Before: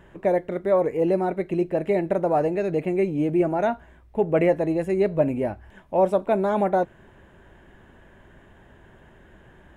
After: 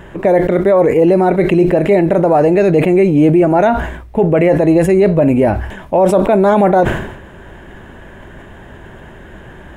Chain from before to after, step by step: loudness maximiser +18 dB; decay stretcher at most 67 dB/s; trim -2.5 dB

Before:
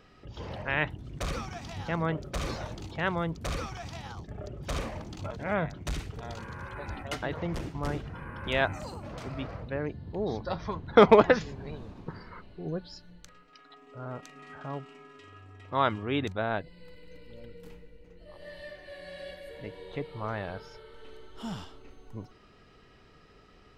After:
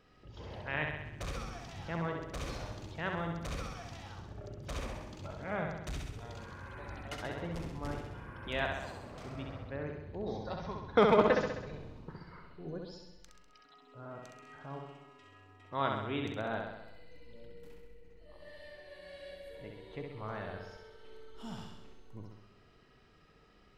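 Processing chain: flutter echo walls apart 11.3 m, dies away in 0.93 s; trim -8 dB

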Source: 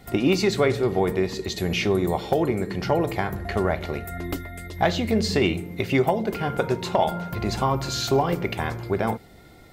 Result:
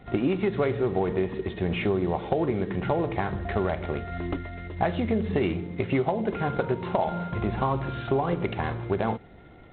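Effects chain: low-pass 2 kHz 12 dB/octave; compression 4:1, threshold -21 dBFS, peak gain reduction 5.5 dB; G.726 24 kbps 8 kHz

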